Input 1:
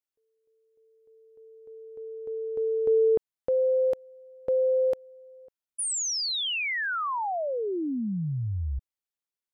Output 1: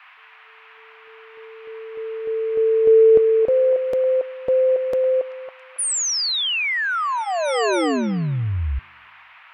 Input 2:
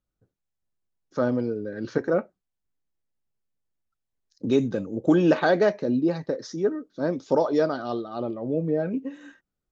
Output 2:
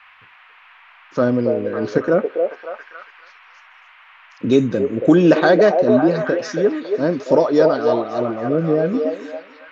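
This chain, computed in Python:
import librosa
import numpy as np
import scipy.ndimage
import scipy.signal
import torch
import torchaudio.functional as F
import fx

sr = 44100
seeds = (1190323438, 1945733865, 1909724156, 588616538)

y = fx.dmg_noise_band(x, sr, seeds[0], low_hz=850.0, high_hz=2700.0, level_db=-55.0)
y = fx.notch(y, sr, hz=840.0, q=13.0)
y = fx.echo_stepped(y, sr, ms=277, hz=570.0, octaves=0.7, feedback_pct=70, wet_db=-2.0)
y = y * 10.0 ** (7.0 / 20.0)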